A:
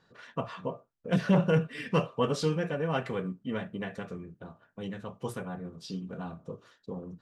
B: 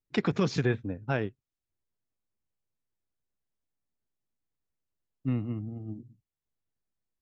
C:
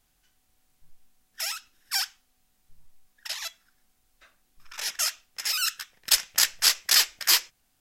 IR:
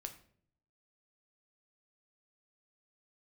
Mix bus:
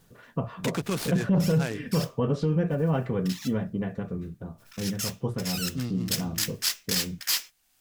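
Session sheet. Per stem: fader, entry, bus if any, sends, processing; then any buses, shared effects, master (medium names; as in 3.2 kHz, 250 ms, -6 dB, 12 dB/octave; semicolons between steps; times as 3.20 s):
-0.5 dB, 0.00 s, no send, tilt EQ -3.5 dB/octave
-3.0 dB, 0.50 s, no send, treble shelf 2.5 kHz +11 dB; delay time shaken by noise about 4.2 kHz, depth 0.042 ms
+1.5 dB, 0.00 s, no send, modulation noise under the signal 10 dB; tilt shelf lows -4.5 dB; hard clipper -6 dBFS, distortion -21 dB; auto duck -12 dB, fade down 0.45 s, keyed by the first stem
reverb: none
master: peak limiter -16 dBFS, peak gain reduction 8.5 dB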